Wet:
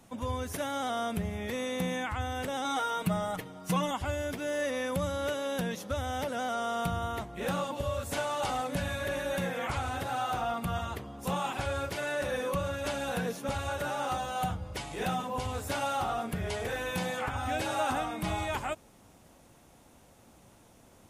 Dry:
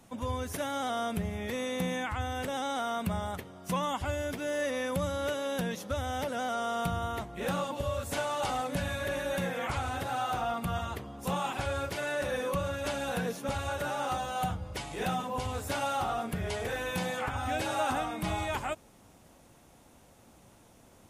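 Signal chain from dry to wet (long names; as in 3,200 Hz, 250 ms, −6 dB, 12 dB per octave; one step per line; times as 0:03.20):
0:02.64–0:03.91: comb filter 6.4 ms, depth 88%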